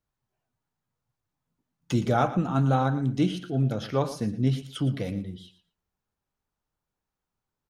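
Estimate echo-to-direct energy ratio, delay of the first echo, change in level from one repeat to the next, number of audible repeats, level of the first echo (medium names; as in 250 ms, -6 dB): -14.0 dB, 115 ms, -15.5 dB, 2, -14.0 dB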